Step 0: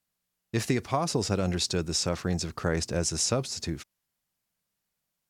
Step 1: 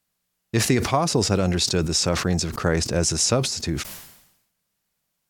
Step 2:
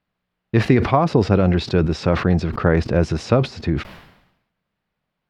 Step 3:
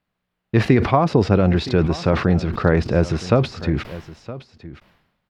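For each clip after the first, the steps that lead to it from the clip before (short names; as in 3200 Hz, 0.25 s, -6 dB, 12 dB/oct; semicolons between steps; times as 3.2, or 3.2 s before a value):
sustainer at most 66 dB/s; gain +6 dB
air absorption 390 m; gain +6 dB
echo 0.966 s -16.5 dB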